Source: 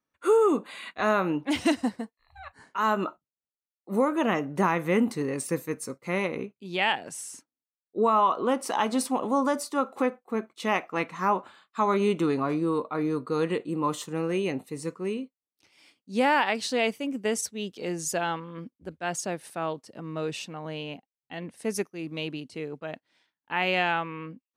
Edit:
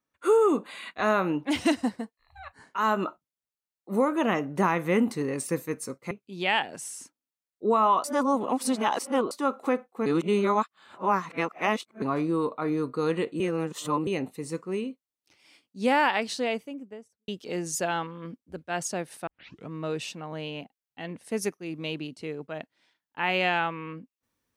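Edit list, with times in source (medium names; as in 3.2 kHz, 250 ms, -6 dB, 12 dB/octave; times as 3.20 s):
6.11–6.44 s: delete
8.37–9.64 s: reverse
10.39–12.35 s: reverse
13.73–14.40 s: reverse
16.45–17.61 s: studio fade out
19.60 s: tape start 0.44 s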